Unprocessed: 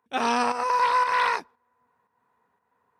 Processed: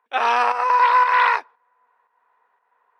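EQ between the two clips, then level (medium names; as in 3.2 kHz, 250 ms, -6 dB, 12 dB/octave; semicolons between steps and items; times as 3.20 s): three-band isolator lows -24 dB, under 420 Hz, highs -18 dB, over 3.4 kHz; bass shelf 410 Hz -8 dB; +8.0 dB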